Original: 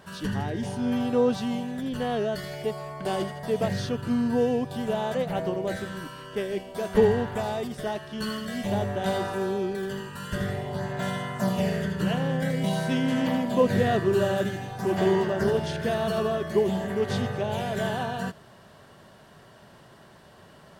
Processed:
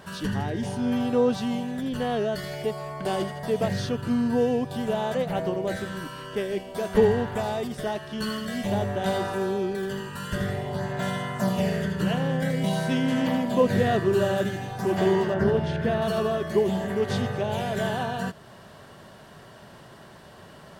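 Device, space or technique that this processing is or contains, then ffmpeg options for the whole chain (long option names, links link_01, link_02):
parallel compression: -filter_complex "[0:a]asplit=2[link_01][link_02];[link_02]acompressor=threshold=-40dB:ratio=6,volume=-4dB[link_03];[link_01][link_03]amix=inputs=2:normalize=0,asettb=1/sr,asplit=3[link_04][link_05][link_06];[link_04]atrim=end=15.344[link_07];[link_05]atrim=start=15.34:end=16.02,asetpts=PTS-STARTPTS,afade=type=in:duration=0.004:curve=qsin,afade=type=out:start_time=0.676:duration=0.004:curve=qsin,bass=frequency=250:gain=4,treble=frequency=4000:gain=-12[link_08];[link_06]atrim=start=16.016[link_09];[link_07][link_08]acrossfade=duration=0.004:curve1=hsin:curve2=qsin[link_10];[link_10][link_09]acrossfade=duration=0.004:curve1=qsin:curve2=hsin"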